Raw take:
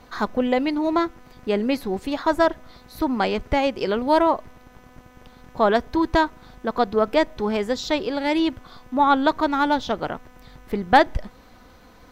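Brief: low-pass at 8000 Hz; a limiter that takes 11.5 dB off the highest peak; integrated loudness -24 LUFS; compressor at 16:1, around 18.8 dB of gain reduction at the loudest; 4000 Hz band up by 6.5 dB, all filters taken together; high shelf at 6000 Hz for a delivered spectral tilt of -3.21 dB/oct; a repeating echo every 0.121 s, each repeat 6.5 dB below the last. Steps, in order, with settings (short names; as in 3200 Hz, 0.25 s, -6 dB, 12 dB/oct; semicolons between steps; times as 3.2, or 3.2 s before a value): LPF 8000 Hz; bell 4000 Hz +7 dB; high shelf 6000 Hz +3.5 dB; compressor 16:1, threshold -27 dBFS; limiter -27 dBFS; feedback echo 0.121 s, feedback 47%, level -6.5 dB; gain +12.5 dB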